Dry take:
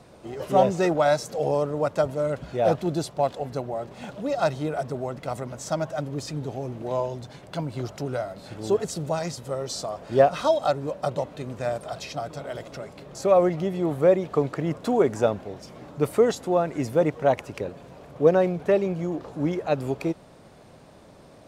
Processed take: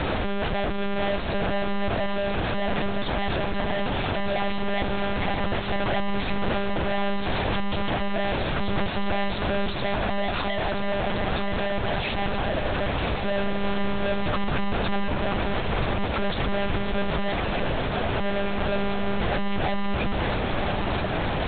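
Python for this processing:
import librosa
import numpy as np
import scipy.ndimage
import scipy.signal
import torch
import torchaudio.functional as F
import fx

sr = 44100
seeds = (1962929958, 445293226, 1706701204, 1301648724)

p1 = np.sign(x) * np.sqrt(np.mean(np.square(x)))
p2 = fx.low_shelf(p1, sr, hz=160.0, db=-4.0)
p3 = fx.lpc_monotone(p2, sr, seeds[0], pitch_hz=200.0, order=8)
p4 = fx.rider(p3, sr, range_db=10, speed_s=0.5)
p5 = p4 + fx.echo_single(p4, sr, ms=979, db=-7.5, dry=0)
y = F.gain(torch.from_numpy(p5), 1.5).numpy()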